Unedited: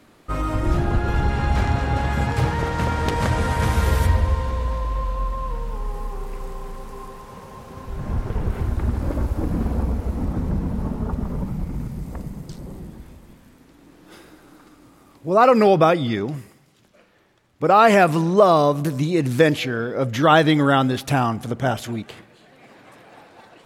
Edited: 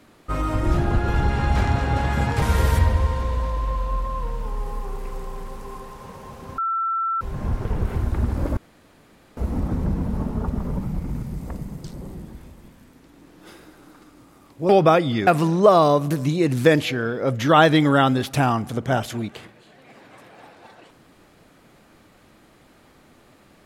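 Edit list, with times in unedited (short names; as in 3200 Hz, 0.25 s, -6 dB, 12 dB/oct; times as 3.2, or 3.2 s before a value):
2.42–3.7 cut
7.86 add tone 1340 Hz -20.5 dBFS 0.63 s
9.22–10.02 room tone
15.34–15.64 cut
16.22–18.01 cut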